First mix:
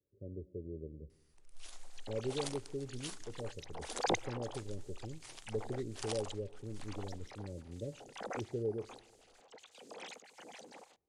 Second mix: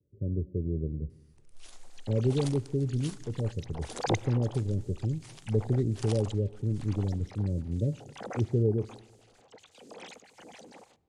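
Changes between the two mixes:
speech: add low-shelf EQ 340 Hz +12 dB
second sound: send +11.5 dB
master: add parametric band 150 Hz +7.5 dB 2.3 octaves

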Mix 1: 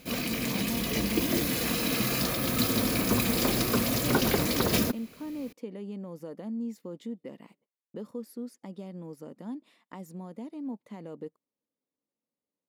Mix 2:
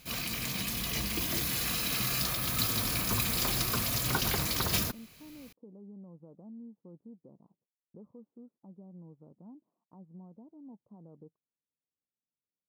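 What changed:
speech: add Gaussian smoothing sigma 12 samples
master: add octave-band graphic EQ 250/500/2,000 Hz −11/−10/−3 dB

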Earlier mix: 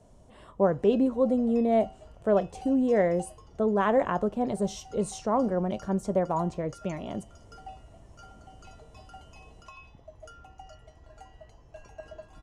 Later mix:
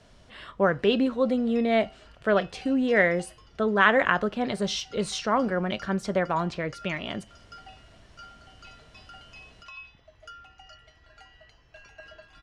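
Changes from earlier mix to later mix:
background −6.5 dB
master: add flat-topped bell 2,600 Hz +15 dB 2.3 octaves

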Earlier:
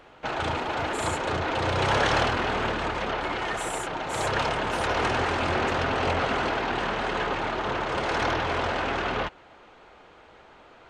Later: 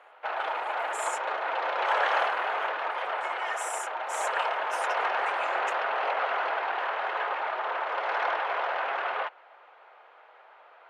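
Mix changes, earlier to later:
background: add low-pass filter 2,200 Hz 12 dB per octave
master: add high-pass filter 580 Hz 24 dB per octave

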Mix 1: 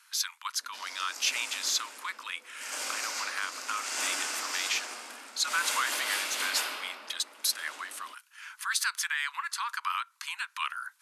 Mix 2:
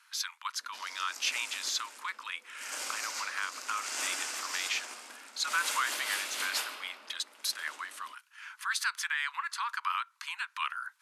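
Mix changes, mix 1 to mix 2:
speech: add high-shelf EQ 5,400 Hz −9 dB
background: send −6.5 dB

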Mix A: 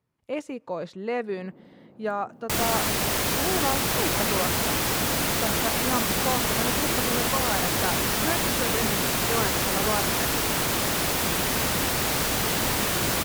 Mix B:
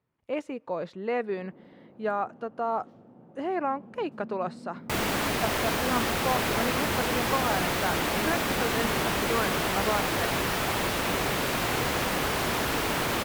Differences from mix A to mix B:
second sound: entry +2.40 s
master: add bass and treble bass −3 dB, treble −9 dB

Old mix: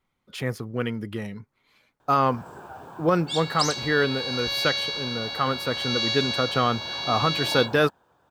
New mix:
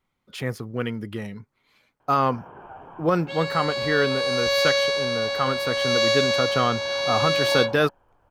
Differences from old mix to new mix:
first sound: add Chebyshev low-pass with heavy ripple 3,200 Hz, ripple 3 dB
second sound: remove resonant band-pass 3,600 Hz, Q 1.6

